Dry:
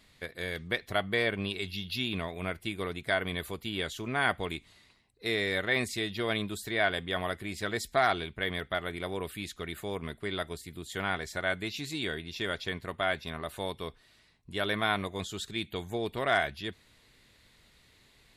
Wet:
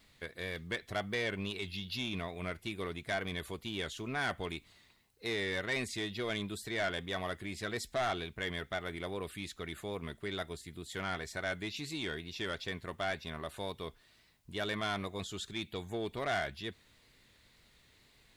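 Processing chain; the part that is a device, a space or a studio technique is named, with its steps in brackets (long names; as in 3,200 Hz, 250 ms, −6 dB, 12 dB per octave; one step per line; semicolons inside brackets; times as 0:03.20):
compact cassette (soft clipping −24.5 dBFS, distortion −12 dB; low-pass filter 11,000 Hz 12 dB per octave; tape wow and flutter; white noise bed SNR 40 dB)
level −3 dB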